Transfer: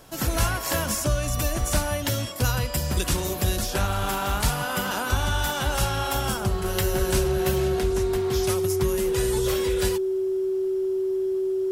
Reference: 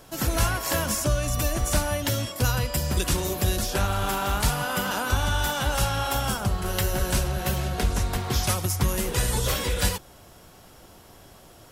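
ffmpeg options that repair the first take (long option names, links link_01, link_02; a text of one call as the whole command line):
ffmpeg -i in.wav -af "bandreject=frequency=380:width=30,asetnsamples=nb_out_samples=441:pad=0,asendcmd='7.79 volume volume 3.5dB',volume=0dB" out.wav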